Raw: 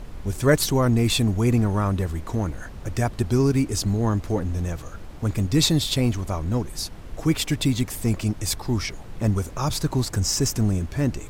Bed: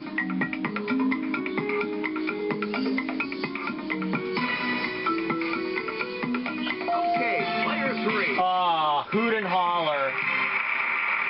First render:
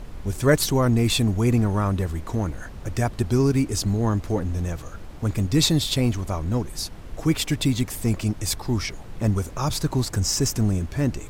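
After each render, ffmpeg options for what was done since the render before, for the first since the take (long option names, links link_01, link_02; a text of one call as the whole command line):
ffmpeg -i in.wav -af anull out.wav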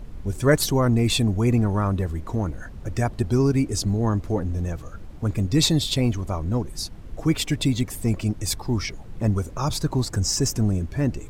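ffmpeg -i in.wav -af "afftdn=noise_reduction=7:noise_floor=-39" out.wav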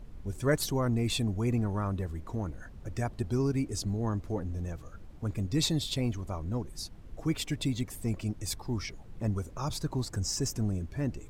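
ffmpeg -i in.wav -af "volume=-9dB" out.wav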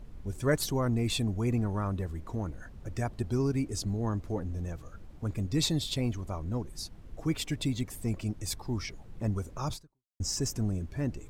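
ffmpeg -i in.wav -filter_complex "[0:a]asplit=2[link_01][link_02];[link_01]atrim=end=10.2,asetpts=PTS-STARTPTS,afade=type=out:start_time=9.73:duration=0.47:curve=exp[link_03];[link_02]atrim=start=10.2,asetpts=PTS-STARTPTS,afade=type=in:duration=0.004:curve=hsin[link_04];[link_03][link_04]concat=n=2:v=0:a=1" out.wav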